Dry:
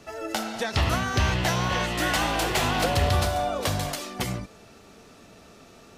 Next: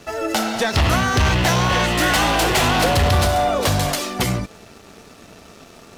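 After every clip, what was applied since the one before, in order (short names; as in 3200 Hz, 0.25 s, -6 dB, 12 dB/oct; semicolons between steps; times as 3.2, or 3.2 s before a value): sample leveller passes 2; gain +2.5 dB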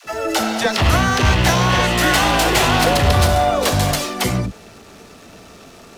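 dispersion lows, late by 61 ms, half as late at 440 Hz; gain +2 dB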